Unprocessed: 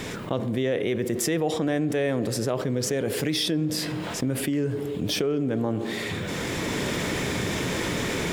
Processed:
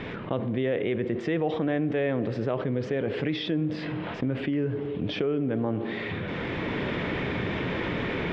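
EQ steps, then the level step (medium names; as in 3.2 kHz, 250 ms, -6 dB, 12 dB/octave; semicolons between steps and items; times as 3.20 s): low-pass 3.1 kHz 24 dB/octave; -1.5 dB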